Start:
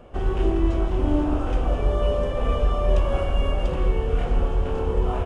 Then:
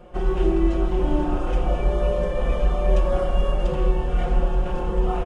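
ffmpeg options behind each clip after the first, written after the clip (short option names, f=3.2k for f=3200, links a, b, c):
-af "aecho=1:1:5.6:0.98,volume=-2dB"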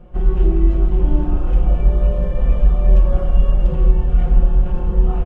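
-af "bass=f=250:g=13,treble=f=4k:g=-7,volume=-5dB"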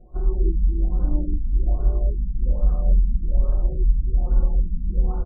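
-af "flanger=delay=2.8:depth=1.2:regen=-42:speed=0.52:shape=sinusoidal,afftfilt=real='re*lt(b*sr/1024,270*pow(1600/270,0.5+0.5*sin(2*PI*1.2*pts/sr)))':imag='im*lt(b*sr/1024,270*pow(1600/270,0.5+0.5*sin(2*PI*1.2*pts/sr)))':win_size=1024:overlap=0.75,volume=-3dB"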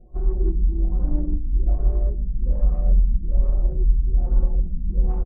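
-filter_complex "[0:a]asplit=2[a][b];[b]adelay=121,lowpass=f=810:p=1,volume=-16dB,asplit=2[c][d];[d]adelay=121,lowpass=f=810:p=1,volume=0.31,asplit=2[e][f];[f]adelay=121,lowpass=f=810:p=1,volume=0.31[g];[a][c][e][g]amix=inputs=4:normalize=0,adynamicsmooth=sensitivity=1.5:basefreq=940"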